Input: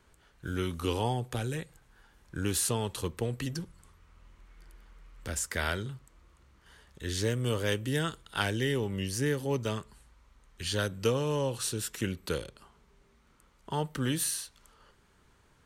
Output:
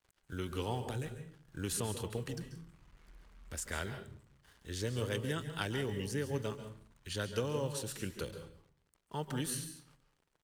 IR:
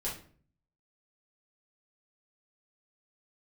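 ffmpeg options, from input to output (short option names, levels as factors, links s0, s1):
-filter_complex "[0:a]acrusher=bits=8:mix=0:aa=0.5,atempo=1.5,asplit=2[s0][s1];[1:a]atrim=start_sample=2205,adelay=134[s2];[s1][s2]afir=irnorm=-1:irlink=0,volume=0.266[s3];[s0][s3]amix=inputs=2:normalize=0,volume=0.473"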